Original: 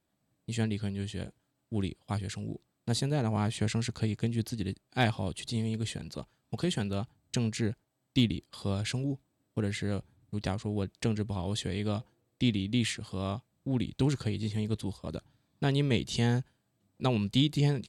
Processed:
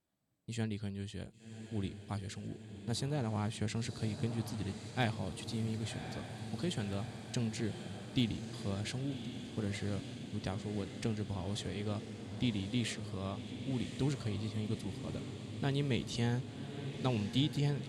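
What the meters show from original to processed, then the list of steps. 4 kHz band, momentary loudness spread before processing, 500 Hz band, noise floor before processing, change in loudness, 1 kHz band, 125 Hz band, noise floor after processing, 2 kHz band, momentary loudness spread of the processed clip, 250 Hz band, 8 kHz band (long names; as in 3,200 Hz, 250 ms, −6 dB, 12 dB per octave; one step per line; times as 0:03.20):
−6.0 dB, 11 LU, −5.5 dB, −78 dBFS, −6.0 dB, −5.5 dB, −5.5 dB, −51 dBFS, −5.5 dB, 8 LU, −5.5 dB, −5.5 dB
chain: feedback delay with all-pass diffusion 1,096 ms, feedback 72%, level −9 dB
level −6.5 dB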